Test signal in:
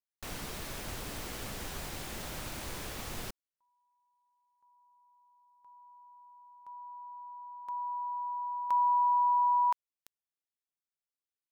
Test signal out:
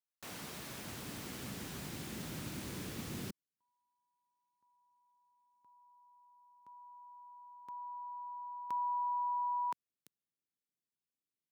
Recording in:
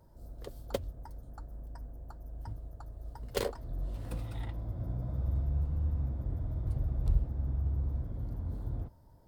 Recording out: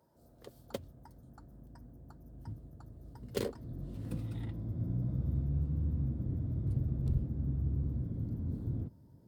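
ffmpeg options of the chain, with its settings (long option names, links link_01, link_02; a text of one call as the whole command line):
ffmpeg -i in.wav -af "highpass=190,asubboost=boost=9.5:cutoff=250,volume=-4.5dB" out.wav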